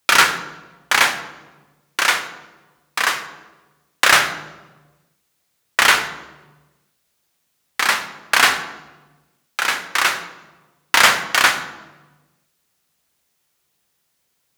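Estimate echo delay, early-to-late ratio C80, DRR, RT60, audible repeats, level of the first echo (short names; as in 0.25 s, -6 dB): none, 13.0 dB, 8.0 dB, 1.2 s, none, none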